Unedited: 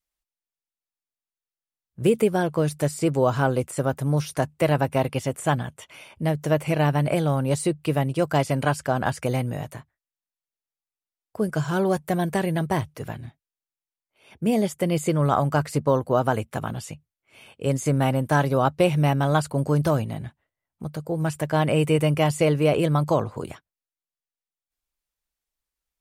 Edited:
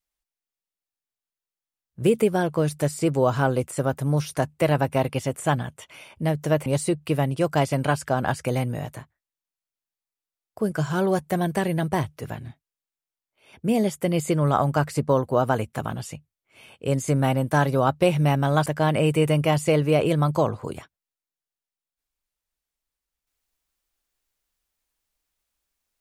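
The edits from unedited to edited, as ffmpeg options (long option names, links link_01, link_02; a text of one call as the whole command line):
ffmpeg -i in.wav -filter_complex "[0:a]asplit=3[link_01][link_02][link_03];[link_01]atrim=end=6.662[link_04];[link_02]atrim=start=7.438:end=19.442[link_05];[link_03]atrim=start=21.388[link_06];[link_04][link_05]acrossfade=duration=0.004:curve1=hsin:curve2=hsin[link_07];[link_07][link_06]acrossfade=duration=0.004:curve1=hsin:curve2=hsin" out.wav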